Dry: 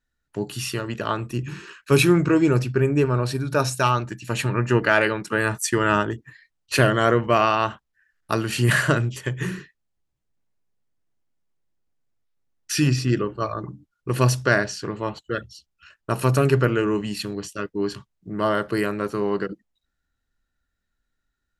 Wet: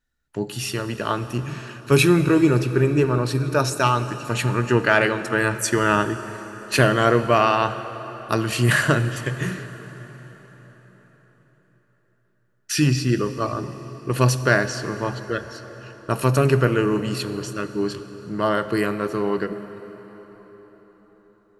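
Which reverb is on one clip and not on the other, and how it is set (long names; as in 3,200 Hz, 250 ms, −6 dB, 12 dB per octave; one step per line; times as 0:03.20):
dense smooth reverb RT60 5 s, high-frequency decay 0.75×, DRR 11 dB
level +1 dB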